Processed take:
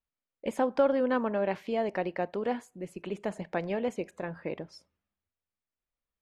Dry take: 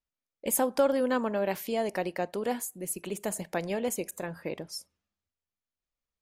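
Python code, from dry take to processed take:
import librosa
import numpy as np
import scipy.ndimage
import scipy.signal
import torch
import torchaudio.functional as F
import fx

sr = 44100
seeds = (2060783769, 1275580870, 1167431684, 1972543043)

y = scipy.signal.sosfilt(scipy.signal.butter(2, 2800.0, 'lowpass', fs=sr, output='sos'), x)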